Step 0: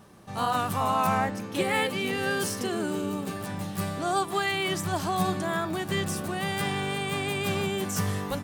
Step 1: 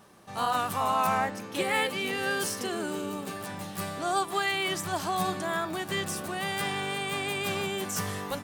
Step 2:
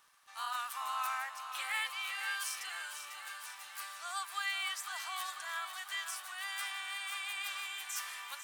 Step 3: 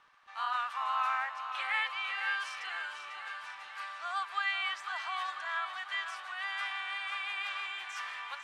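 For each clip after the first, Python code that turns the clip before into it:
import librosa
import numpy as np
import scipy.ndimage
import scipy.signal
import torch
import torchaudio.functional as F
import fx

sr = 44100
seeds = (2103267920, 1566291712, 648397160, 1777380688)

y1 = fx.low_shelf(x, sr, hz=260.0, db=-9.5)
y2 = scipy.signal.sosfilt(scipy.signal.butter(4, 1100.0, 'highpass', fs=sr, output='sos'), y1)
y2 = fx.dmg_crackle(y2, sr, seeds[0], per_s=65.0, level_db=-47.0)
y2 = fx.echo_feedback(y2, sr, ms=497, feedback_pct=59, wet_db=-9)
y2 = y2 * librosa.db_to_amplitude(-6.5)
y3 = scipy.signal.sosfilt(scipy.signal.butter(2, 2700.0, 'lowpass', fs=sr, output='sos'), y2)
y3 = y3 * librosa.db_to_amplitude(5.5)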